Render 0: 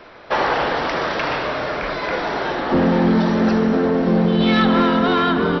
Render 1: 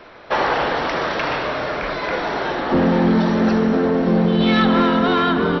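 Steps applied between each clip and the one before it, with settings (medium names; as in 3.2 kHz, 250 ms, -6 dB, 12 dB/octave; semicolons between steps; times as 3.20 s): band-stop 4.9 kHz, Q 23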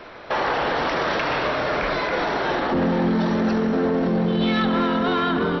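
peak limiter -16.5 dBFS, peak gain reduction 9 dB; trim +2 dB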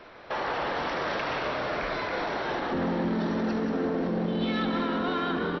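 frequency-shifting echo 182 ms, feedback 40%, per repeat +61 Hz, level -8 dB; trim -8 dB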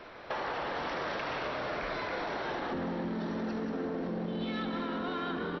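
compression, threshold -32 dBFS, peak gain reduction 8 dB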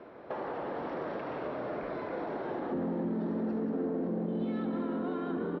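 band-pass filter 300 Hz, Q 0.74; trim +3.5 dB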